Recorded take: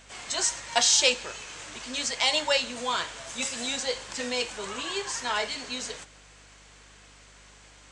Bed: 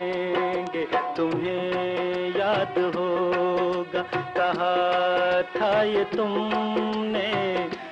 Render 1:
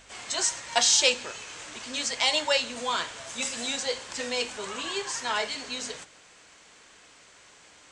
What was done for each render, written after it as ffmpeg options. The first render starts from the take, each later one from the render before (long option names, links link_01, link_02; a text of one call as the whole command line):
ffmpeg -i in.wav -af "bandreject=frequency=50:width_type=h:width=4,bandreject=frequency=100:width_type=h:width=4,bandreject=frequency=150:width_type=h:width=4,bandreject=frequency=200:width_type=h:width=4,bandreject=frequency=250:width_type=h:width=4" out.wav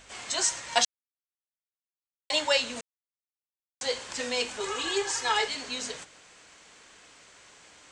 ffmpeg -i in.wav -filter_complex "[0:a]asettb=1/sr,asplit=3[link_01][link_02][link_03];[link_01]atrim=end=4.604[link_04];[link_02]atrim=start=4.6:end=5.48,asetpts=PTS-STARTPTS,afade=type=in:duration=0.004:curve=qsin,afade=type=out:start_time=0.876:duration=0.004:curve=qsin,aecho=1:1:2.4:0.86,atrim=end_sample=38808[link_05];[link_03]atrim=start=5.476[link_06];[link_04][link_05]acrossfade=duration=0.004:curve1=hsin:curve2=qsin[link_07];[link_07][link_06]acrossfade=duration=0.004:curve1=qsin:curve2=hsin,asplit=5[link_08][link_09][link_10][link_11][link_12];[link_08]atrim=end=0.85,asetpts=PTS-STARTPTS,afade=type=out:start_time=0.846:duration=0.004:curve=hsin[link_13];[link_09]atrim=start=0.85:end=2.3,asetpts=PTS-STARTPTS,volume=0[link_14];[link_10]atrim=start=2.3:end=2.81,asetpts=PTS-STARTPTS,afade=type=in:duration=0.004:curve=hsin,afade=type=out:start_time=0.506:duration=0.004:curve=hsin[link_15];[link_11]atrim=start=2.81:end=3.81,asetpts=PTS-STARTPTS,volume=0[link_16];[link_12]atrim=start=3.81,asetpts=PTS-STARTPTS,afade=type=in:duration=0.004:curve=hsin[link_17];[link_13][link_14][link_15][link_16][link_17]concat=n=5:v=0:a=1" out.wav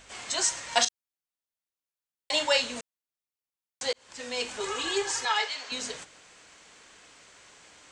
ffmpeg -i in.wav -filter_complex "[0:a]asettb=1/sr,asplit=3[link_01][link_02][link_03];[link_01]atrim=end=0.544[link_04];[link_02]atrim=start=0.54:end=2.77,asetpts=PTS-STARTPTS,afade=type=in:duration=0.004:curve=qsin,afade=type=out:start_time=2.226:duration=0.004:curve=qsin,asplit=2[link_05][link_06];[link_06]adelay=37,volume=-9.5dB[link_07];[link_05][link_07]amix=inputs=2:normalize=0,atrim=end_sample=98343[link_08];[link_03]atrim=start=2.766[link_09];[link_04][link_08]acrossfade=duration=0.004:curve1=hsin:curve2=qsin[link_10];[link_10][link_09]acrossfade=duration=0.004:curve1=qsin:curve2=hsin,asettb=1/sr,asplit=3[link_11][link_12][link_13];[link_11]atrim=end=5.254[link_14];[link_12]atrim=start=5.25:end=5.72,asetpts=PTS-STARTPTS,afade=type=in:duration=0.004:curve=qsin,afade=type=out:start_time=0.466:duration=0.004:curve=qsin,acrossover=split=510 7400:gain=0.1 1 0.0708[link_15][link_16][link_17];[link_15][link_16][link_17]amix=inputs=3:normalize=0[link_18];[link_13]atrim=start=5.716[link_19];[link_14][link_18]acrossfade=duration=0.004:curve1=hsin:curve2=qsin[link_20];[link_20][link_19]acrossfade=duration=0.004:curve1=qsin:curve2=hsin,asplit=2[link_21][link_22];[link_21]atrim=end=3.93,asetpts=PTS-STARTPTS,afade=type=out:start_time=3.926:duration=0.004:curve=hsin[link_23];[link_22]atrim=start=3.93,asetpts=PTS-STARTPTS,afade=type=in:duration=0.62[link_24];[link_23][link_24]concat=n=2:v=0:a=1" out.wav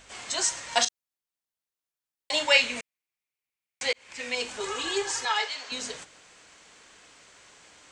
ffmpeg -i in.wav -filter_complex "[0:a]asettb=1/sr,asplit=3[link_01][link_02][link_03];[link_01]atrim=end=2.484[link_04];[link_02]atrim=start=2.48:end=4.35,asetpts=PTS-STARTPTS,afade=type=in:duration=0.004:curve=qsin,afade=type=out:start_time=1.866:duration=0.004:curve=qsin,equalizer=frequency=2300:width=2.7:gain=12.5[link_05];[link_03]atrim=start=4.346[link_06];[link_04][link_05]acrossfade=duration=0.004:curve1=hsin:curve2=qsin[link_07];[link_07][link_06]acrossfade=duration=0.004:curve1=qsin:curve2=hsin" out.wav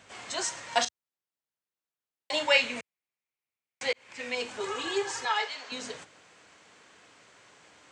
ffmpeg -i in.wav -af "highpass=frequency=80:width=0.5412,highpass=frequency=80:width=1.3066,highshelf=frequency=3400:gain=-8.5" out.wav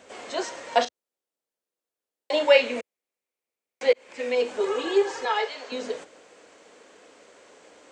ffmpeg -i in.wav -filter_complex "[0:a]acrossover=split=5000[link_01][link_02];[link_02]acompressor=threshold=-54dB:ratio=4:attack=1:release=60[link_03];[link_01][link_03]amix=inputs=2:normalize=0,equalizer=frequency=125:width_type=o:width=1:gain=-10,equalizer=frequency=250:width_type=o:width=1:gain=6,equalizer=frequency=500:width_type=o:width=1:gain=12,equalizer=frequency=8000:width_type=o:width=1:gain=3" out.wav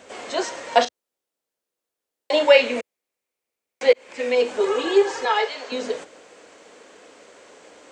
ffmpeg -i in.wav -af "volume=4.5dB,alimiter=limit=-2dB:level=0:latency=1" out.wav